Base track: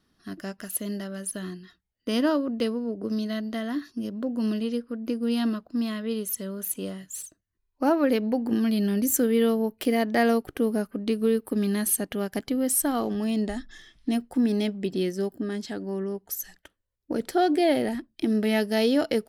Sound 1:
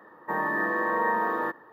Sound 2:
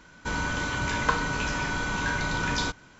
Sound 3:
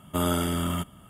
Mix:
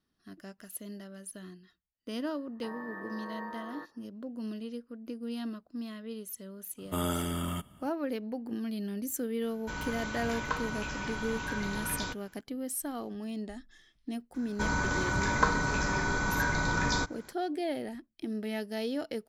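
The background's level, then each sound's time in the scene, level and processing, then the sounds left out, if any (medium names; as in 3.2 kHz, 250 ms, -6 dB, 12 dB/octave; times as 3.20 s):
base track -11.5 dB
2.34 s: add 1 -16.5 dB
6.78 s: add 3 -6 dB
9.42 s: add 2 -8.5 dB
14.34 s: add 2 -0.5 dB + peaking EQ 2.9 kHz -12.5 dB 0.46 oct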